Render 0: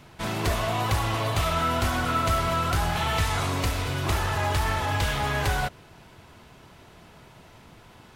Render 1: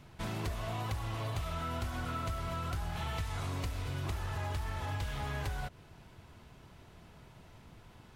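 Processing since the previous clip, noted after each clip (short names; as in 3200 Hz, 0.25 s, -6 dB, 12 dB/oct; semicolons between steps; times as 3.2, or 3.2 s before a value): low shelf 160 Hz +8.5 dB; compressor, threshold -25 dBFS, peak gain reduction 10.5 dB; gain -8.5 dB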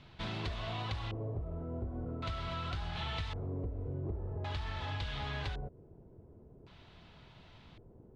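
LFO low-pass square 0.45 Hz 440–3800 Hz; gain -2 dB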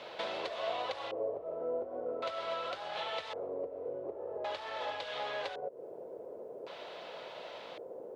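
compressor 5:1, threshold -47 dBFS, peak gain reduction 12.5 dB; resonant high-pass 530 Hz, resonance Q 4.9; gain +11 dB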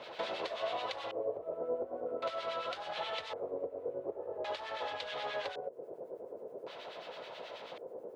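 harmonic tremolo 9.3 Hz, crossover 1500 Hz; gain +3 dB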